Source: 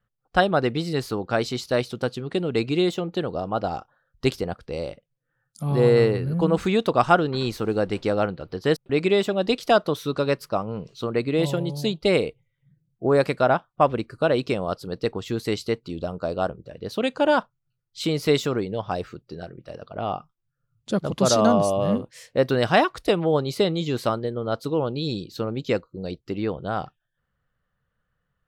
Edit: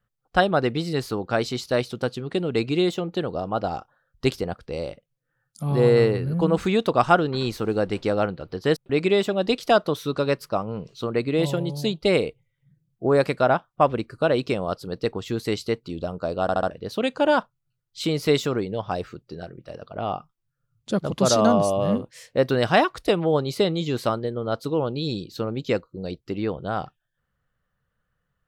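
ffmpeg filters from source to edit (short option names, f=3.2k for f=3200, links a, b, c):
-filter_complex "[0:a]asplit=5[a][b][c][d][e];[a]atrim=end=16.492[f];[b]atrim=start=16.418:end=16.492[g];[c]atrim=start=16.418:end=16.492[h];[d]atrim=start=16.418:end=16.492[i];[e]atrim=start=16.698[j];[f][g]acrossfade=d=0.004:c1=hsin:c2=hsin[k];[k][h]acrossfade=d=0.004:c1=hsin:c2=hsin[l];[l][i]acrossfade=d=0.004:c1=hsin:c2=hsin[m];[m][j]acrossfade=d=0.004:c1=hsin:c2=hsin"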